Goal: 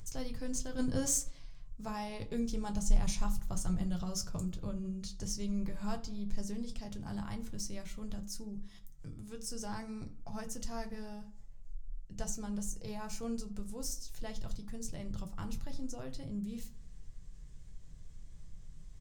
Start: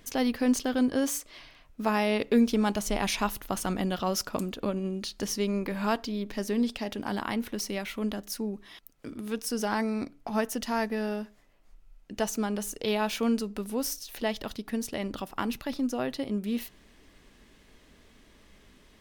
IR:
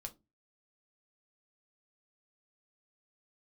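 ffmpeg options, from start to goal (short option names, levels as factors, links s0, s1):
-filter_complex "[0:a]firequalizer=gain_entry='entry(160,0);entry(220,-18);entry(2700,-21);entry(7200,-4);entry(11000,-17)':delay=0.05:min_phase=1,acompressor=mode=upward:threshold=0.00224:ratio=2.5[s0];[1:a]atrim=start_sample=2205[s1];[s0][s1]afir=irnorm=-1:irlink=0,asplit=3[s2][s3][s4];[s2]afade=t=out:st=0.78:d=0.02[s5];[s3]acontrast=82,afade=t=in:st=0.78:d=0.02,afade=t=out:st=1.29:d=0.02[s6];[s4]afade=t=in:st=1.29:d=0.02[s7];[s5][s6][s7]amix=inputs=3:normalize=0,asettb=1/sr,asplit=3[s8][s9][s10];[s8]atrim=end=12.704[s11];[s9]atrim=start=12.7:end=13.22,asetpts=PTS-STARTPTS,afade=t=in:d=0.004:c=qsin,afade=t=out:st=0.516:d=0.004:c=qsin,equalizer=f=3400:t=o:w=0.34:g=-12.5[s12];[s10]atrim=start=13.216[s13];[s11][s12]acrossfade=d=0.004:c1=hsin:c2=qsin[s14];[s14][s13]acrossfade=d=0.004:c1=qsin:c2=hsin,asplit=2[s15][s16];[s16]adelay=84,lowpass=f=2800:p=1,volume=0.126,asplit=2[s17][s18];[s18]adelay=84,lowpass=f=2800:p=1,volume=0.5,asplit=2[s19][s20];[s20]adelay=84,lowpass=f=2800:p=1,volume=0.5,asplit=2[s21][s22];[s22]adelay=84,lowpass=f=2800:p=1,volume=0.5[s23];[s15][s17][s19][s21][s23]amix=inputs=5:normalize=0,volume=2.37"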